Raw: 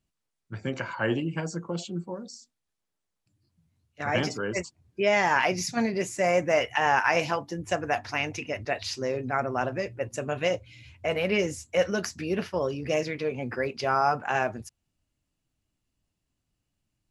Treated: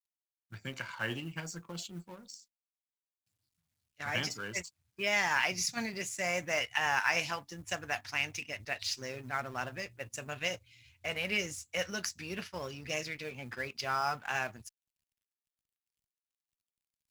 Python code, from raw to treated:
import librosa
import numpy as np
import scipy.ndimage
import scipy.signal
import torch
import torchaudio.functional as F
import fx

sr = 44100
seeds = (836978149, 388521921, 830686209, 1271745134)

y = fx.law_mismatch(x, sr, coded='A')
y = fx.tone_stack(y, sr, knobs='5-5-5')
y = F.gain(torch.from_numpy(y), 7.0).numpy()